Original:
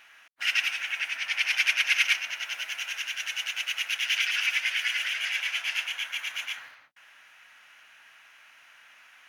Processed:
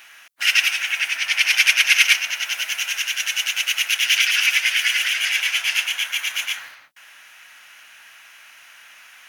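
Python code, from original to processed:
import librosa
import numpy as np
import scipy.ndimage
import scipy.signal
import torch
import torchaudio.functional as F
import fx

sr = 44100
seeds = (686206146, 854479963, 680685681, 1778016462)

y = fx.high_shelf(x, sr, hz=4600.0, db=11.0)
y = F.gain(torch.from_numpy(y), 6.0).numpy()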